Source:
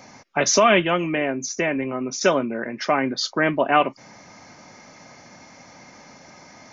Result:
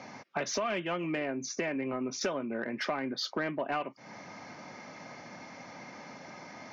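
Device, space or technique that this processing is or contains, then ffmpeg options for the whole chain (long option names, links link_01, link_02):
AM radio: -af "highpass=120,lowpass=4100,acompressor=threshold=-30dB:ratio=5,asoftclip=type=tanh:threshold=-21dB"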